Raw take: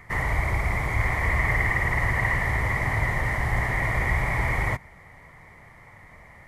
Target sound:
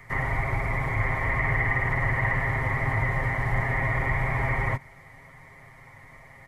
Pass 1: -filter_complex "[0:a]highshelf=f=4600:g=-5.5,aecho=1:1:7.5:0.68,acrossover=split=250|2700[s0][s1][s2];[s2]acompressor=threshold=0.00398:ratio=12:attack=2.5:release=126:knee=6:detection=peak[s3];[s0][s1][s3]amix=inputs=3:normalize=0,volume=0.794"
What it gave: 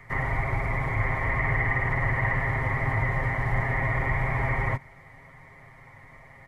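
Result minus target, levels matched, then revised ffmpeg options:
8 kHz band -3.5 dB
-filter_complex "[0:a]highshelf=f=4600:g=2,aecho=1:1:7.5:0.68,acrossover=split=250|2700[s0][s1][s2];[s2]acompressor=threshold=0.00398:ratio=12:attack=2.5:release=126:knee=6:detection=peak[s3];[s0][s1][s3]amix=inputs=3:normalize=0,volume=0.794"

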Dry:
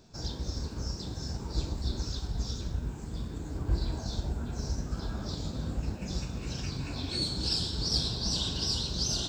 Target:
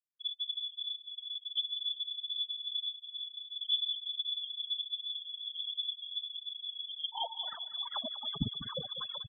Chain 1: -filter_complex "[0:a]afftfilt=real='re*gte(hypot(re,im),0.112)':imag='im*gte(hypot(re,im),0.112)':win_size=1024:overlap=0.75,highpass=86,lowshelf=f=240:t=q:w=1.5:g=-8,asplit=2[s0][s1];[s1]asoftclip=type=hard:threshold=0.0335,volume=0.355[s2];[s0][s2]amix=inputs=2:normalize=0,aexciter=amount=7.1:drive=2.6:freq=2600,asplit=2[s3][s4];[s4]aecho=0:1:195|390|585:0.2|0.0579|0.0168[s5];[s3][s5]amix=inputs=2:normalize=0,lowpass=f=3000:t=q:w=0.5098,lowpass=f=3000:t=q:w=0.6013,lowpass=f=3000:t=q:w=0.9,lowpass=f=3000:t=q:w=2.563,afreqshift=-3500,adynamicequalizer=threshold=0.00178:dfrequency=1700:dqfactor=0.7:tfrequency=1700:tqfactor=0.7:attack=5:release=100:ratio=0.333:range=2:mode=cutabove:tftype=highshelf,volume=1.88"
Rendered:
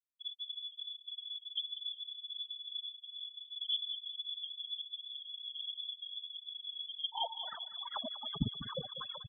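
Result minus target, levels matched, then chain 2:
125 Hz band +4.0 dB
-filter_complex "[0:a]afftfilt=real='re*gte(hypot(re,im),0.112)':imag='im*gte(hypot(re,im),0.112)':win_size=1024:overlap=0.75,lowshelf=f=240:t=q:w=1.5:g=-8,asplit=2[s0][s1];[s1]asoftclip=type=hard:threshold=0.0335,volume=0.355[s2];[s0][s2]amix=inputs=2:normalize=0,aexciter=amount=7.1:drive=2.6:freq=2600,asplit=2[s3][s4];[s4]aecho=0:1:195|390|585:0.2|0.0579|0.0168[s5];[s3][s5]amix=inputs=2:normalize=0,lowpass=f=3000:t=q:w=0.5098,lowpass=f=3000:t=q:w=0.6013,lowpass=f=3000:t=q:w=0.9,lowpass=f=3000:t=q:w=2.563,afreqshift=-3500,adynamicequalizer=threshold=0.00178:dfrequency=1700:dqfactor=0.7:tfrequency=1700:tqfactor=0.7:attack=5:release=100:ratio=0.333:range=2:mode=cutabove:tftype=highshelf,volume=1.88"

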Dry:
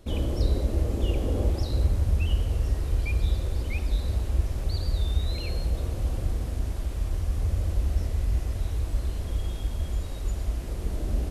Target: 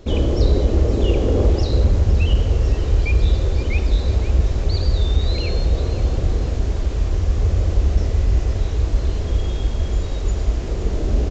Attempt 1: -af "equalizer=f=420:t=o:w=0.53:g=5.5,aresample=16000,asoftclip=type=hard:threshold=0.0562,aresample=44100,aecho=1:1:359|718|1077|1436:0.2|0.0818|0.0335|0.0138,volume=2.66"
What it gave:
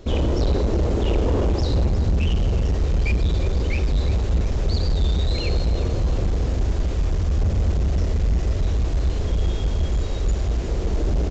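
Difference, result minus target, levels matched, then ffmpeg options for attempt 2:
hard clipper: distortion +15 dB; echo 156 ms early
-af "equalizer=f=420:t=o:w=0.53:g=5.5,aresample=16000,asoftclip=type=hard:threshold=0.15,aresample=44100,aecho=1:1:515|1030|1545|2060:0.2|0.0818|0.0335|0.0138,volume=2.66"

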